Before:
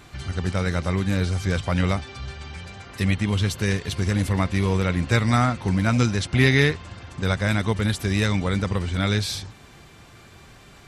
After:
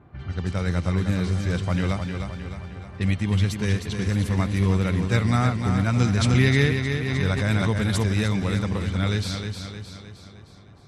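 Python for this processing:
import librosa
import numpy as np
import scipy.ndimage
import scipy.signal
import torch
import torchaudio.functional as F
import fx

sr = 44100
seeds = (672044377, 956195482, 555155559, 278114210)

y = fx.env_lowpass(x, sr, base_hz=950.0, full_db=-19.5)
y = scipy.signal.sosfilt(scipy.signal.butter(2, 72.0, 'highpass', fs=sr, output='sos'), y)
y = fx.low_shelf(y, sr, hz=200.0, db=6.0)
y = fx.echo_feedback(y, sr, ms=309, feedback_pct=51, wet_db=-6.5)
y = fx.pre_swell(y, sr, db_per_s=22.0, at=(6.02, 8.08))
y = F.gain(torch.from_numpy(y), -4.5).numpy()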